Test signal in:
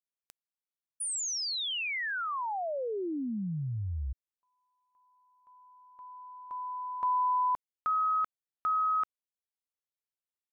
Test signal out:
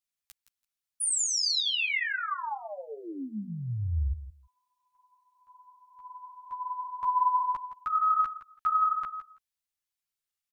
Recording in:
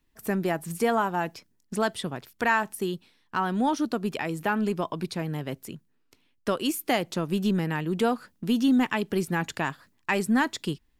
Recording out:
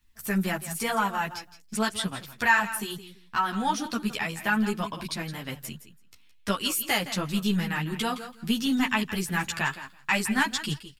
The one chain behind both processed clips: peaking EQ 410 Hz -14 dB 2.3 oct; on a send: feedback delay 166 ms, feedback 15%, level -13 dB; on the sum: three-phase chorus; trim +9 dB

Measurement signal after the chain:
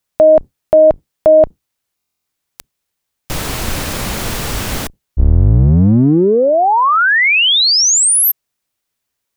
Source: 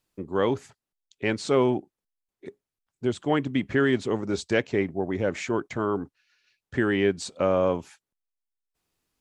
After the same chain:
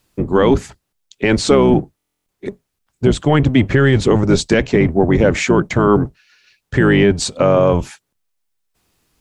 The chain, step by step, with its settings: octave divider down 1 oct, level -1 dB; buffer glitch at 1.96 s, samples 1024, times 12; loudness maximiser +15.5 dB; trim -1 dB

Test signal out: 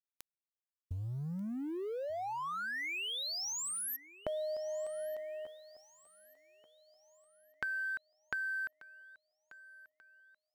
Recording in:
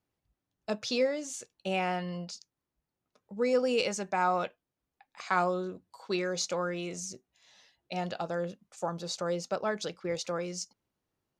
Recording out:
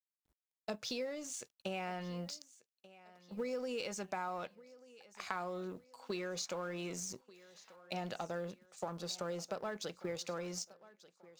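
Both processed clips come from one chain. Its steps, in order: companding laws mixed up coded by A; compression 6:1, threshold -39 dBFS; transient shaper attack 0 dB, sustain +4 dB; thinning echo 1187 ms, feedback 43%, high-pass 190 Hz, level -19 dB; trim +1.5 dB

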